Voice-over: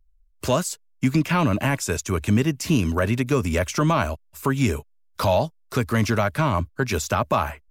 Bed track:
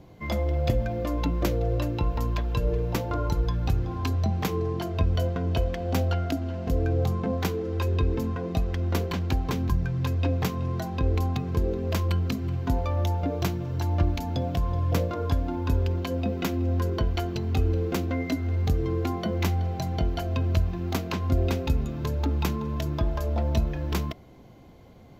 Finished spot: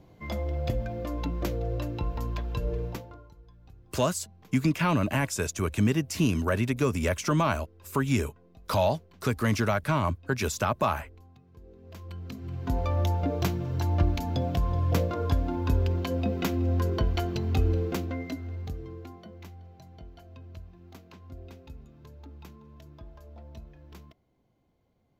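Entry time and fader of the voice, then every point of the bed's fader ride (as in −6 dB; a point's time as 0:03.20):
3.50 s, −4.5 dB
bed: 0:02.86 −5 dB
0:03.32 −28 dB
0:11.52 −28 dB
0:12.85 −0.5 dB
0:17.72 −0.5 dB
0:19.49 −21 dB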